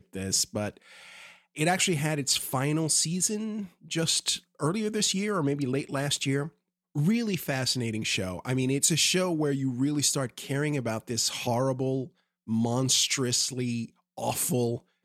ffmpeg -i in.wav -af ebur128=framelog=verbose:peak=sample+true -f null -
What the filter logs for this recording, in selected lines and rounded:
Integrated loudness:
  I:         -27.2 LUFS
  Threshold: -37.5 LUFS
Loudness range:
  LRA:         2.2 LU
  Threshold: -47.4 LUFS
  LRA low:   -28.6 LUFS
  LRA high:  -26.5 LUFS
Sample peak:
  Peak:       -9.4 dBFS
True peak:
  Peak:       -9.4 dBFS